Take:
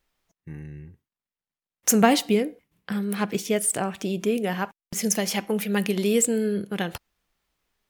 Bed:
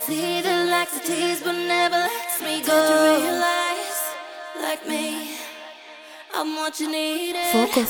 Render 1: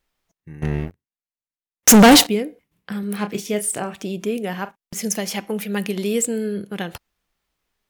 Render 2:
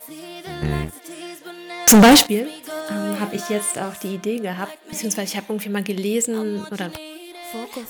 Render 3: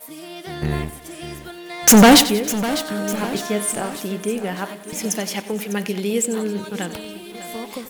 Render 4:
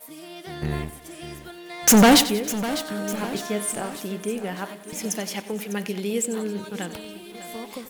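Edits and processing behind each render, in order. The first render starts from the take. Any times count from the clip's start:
0.62–2.27 s: waveshaping leveller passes 5; 3.00–3.94 s: doubling 29 ms -9 dB; 4.55–4.96 s: doubling 41 ms -14 dB
add bed -12.5 dB
feedback delay 92 ms, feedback 46%, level -15 dB; bit-crushed delay 601 ms, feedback 55%, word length 7-bit, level -14 dB
trim -4.5 dB

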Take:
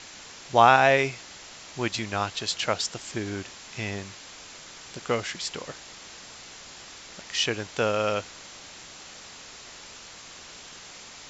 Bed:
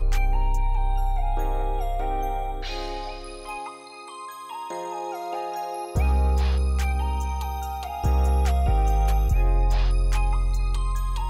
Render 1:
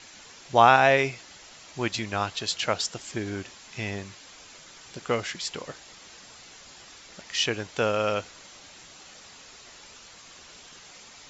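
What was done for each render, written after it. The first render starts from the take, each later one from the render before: noise reduction 6 dB, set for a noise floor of -45 dBFS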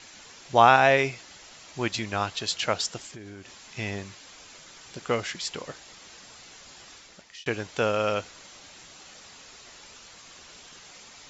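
3.06–3.77 s: compression 4:1, threshold -41 dBFS; 6.94–7.46 s: fade out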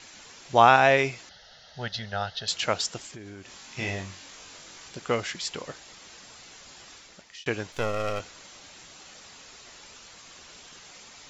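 1.29–2.48 s: static phaser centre 1.6 kHz, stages 8; 3.49–4.89 s: flutter echo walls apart 3.7 m, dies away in 0.27 s; 7.72–8.20 s: partial rectifier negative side -12 dB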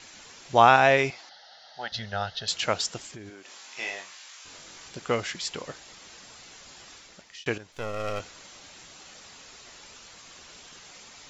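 1.10–1.92 s: cabinet simulation 380–5900 Hz, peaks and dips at 430 Hz -8 dB, 790 Hz +8 dB, 2.6 kHz -4 dB, 4.5 kHz +3 dB; 3.29–4.44 s: high-pass 300 Hz -> 1.2 kHz; 7.58–8.23 s: fade in, from -14 dB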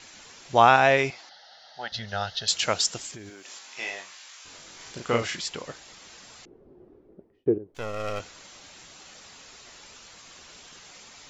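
2.08–3.59 s: treble shelf 4.8 kHz +9 dB; 4.76–5.41 s: doubling 34 ms -2 dB; 6.45–7.75 s: resonant low-pass 380 Hz, resonance Q 4.3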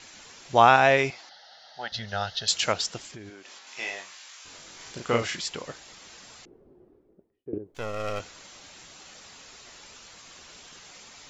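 2.72–3.67 s: distance through air 95 m; 6.33–7.53 s: fade out, to -19 dB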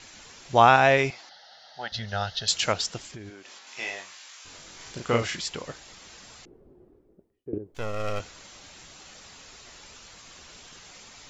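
bass shelf 110 Hz +7.5 dB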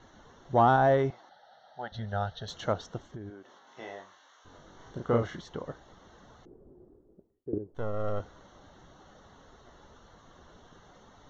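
saturation -12.5 dBFS, distortion -12 dB; boxcar filter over 18 samples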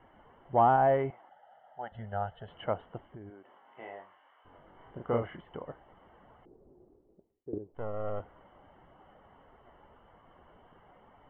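rippled Chebyshev low-pass 3.1 kHz, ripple 6 dB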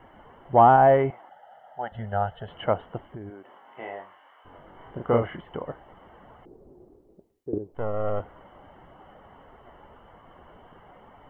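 trim +8 dB

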